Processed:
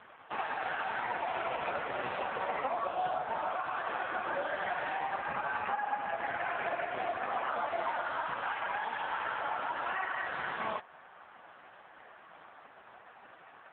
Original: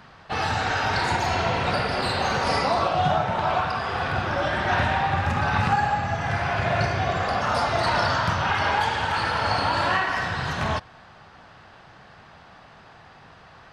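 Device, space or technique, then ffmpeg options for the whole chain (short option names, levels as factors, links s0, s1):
voicemail: -af "highpass=310,lowpass=3100,acompressor=threshold=0.0447:ratio=8" -ar 8000 -c:a libopencore_amrnb -b:a 4750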